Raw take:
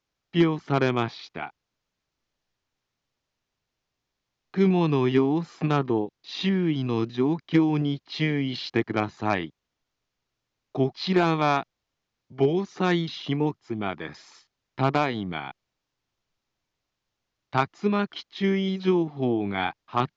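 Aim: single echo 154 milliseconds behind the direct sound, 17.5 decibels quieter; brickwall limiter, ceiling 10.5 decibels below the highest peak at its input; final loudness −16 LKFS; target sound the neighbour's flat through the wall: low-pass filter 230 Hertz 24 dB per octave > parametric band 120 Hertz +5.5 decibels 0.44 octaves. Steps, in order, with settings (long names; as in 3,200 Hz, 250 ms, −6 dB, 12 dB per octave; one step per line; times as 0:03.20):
brickwall limiter −21.5 dBFS
low-pass filter 230 Hz 24 dB per octave
parametric band 120 Hz +5.5 dB 0.44 octaves
single-tap delay 154 ms −17.5 dB
level +19 dB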